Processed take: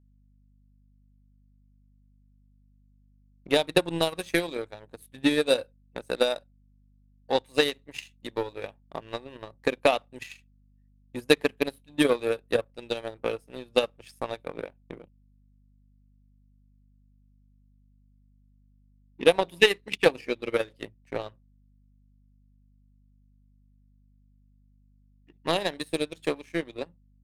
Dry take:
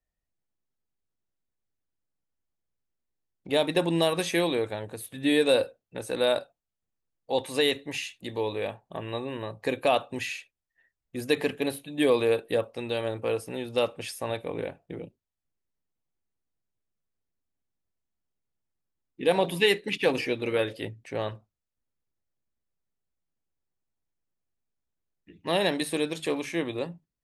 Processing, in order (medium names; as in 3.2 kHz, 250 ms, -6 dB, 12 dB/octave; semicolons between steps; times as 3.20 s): power-law waveshaper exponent 1.4; transient shaper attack +11 dB, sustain -6 dB; hum 50 Hz, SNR 30 dB; trim -2 dB